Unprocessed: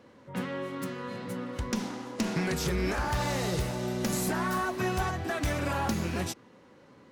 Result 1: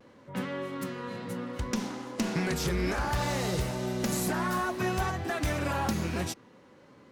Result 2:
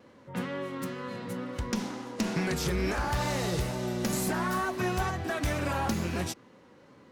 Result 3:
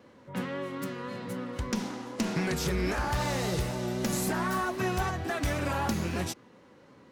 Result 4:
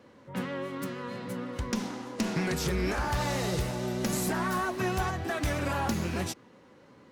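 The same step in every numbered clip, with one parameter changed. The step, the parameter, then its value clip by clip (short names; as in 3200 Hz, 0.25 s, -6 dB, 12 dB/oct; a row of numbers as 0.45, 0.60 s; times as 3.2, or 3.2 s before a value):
vibrato, rate: 0.61, 2.2, 3.8, 6.3 Hz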